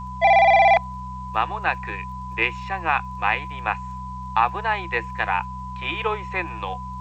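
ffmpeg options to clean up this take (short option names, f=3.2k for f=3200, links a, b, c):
-af "adeclick=t=4,bandreject=f=63.2:t=h:w=4,bandreject=f=126.4:t=h:w=4,bandreject=f=189.6:t=h:w=4,bandreject=f=1k:w=30,agate=range=-21dB:threshold=-25dB"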